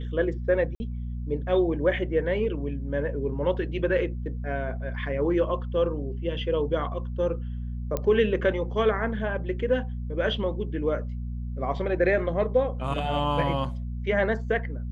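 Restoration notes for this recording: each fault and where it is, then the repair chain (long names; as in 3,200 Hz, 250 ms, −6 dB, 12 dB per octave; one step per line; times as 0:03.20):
mains hum 60 Hz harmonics 4 −32 dBFS
0:00.75–0:00.80: drop-out 50 ms
0:07.97: click −14 dBFS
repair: click removal
hum removal 60 Hz, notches 4
repair the gap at 0:00.75, 50 ms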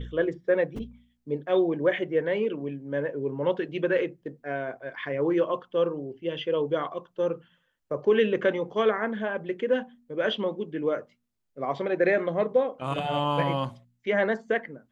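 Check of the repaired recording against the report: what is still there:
none of them is left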